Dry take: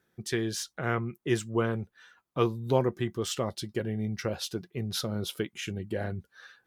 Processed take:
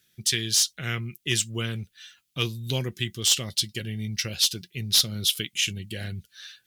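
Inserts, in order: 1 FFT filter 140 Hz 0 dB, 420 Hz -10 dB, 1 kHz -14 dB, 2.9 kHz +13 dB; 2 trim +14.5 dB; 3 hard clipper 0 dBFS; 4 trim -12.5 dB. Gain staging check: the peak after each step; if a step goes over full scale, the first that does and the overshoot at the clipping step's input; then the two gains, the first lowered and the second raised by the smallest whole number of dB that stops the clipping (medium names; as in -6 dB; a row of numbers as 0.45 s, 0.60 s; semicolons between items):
-7.0 dBFS, +7.5 dBFS, 0.0 dBFS, -12.5 dBFS; step 2, 7.5 dB; step 2 +6.5 dB, step 4 -4.5 dB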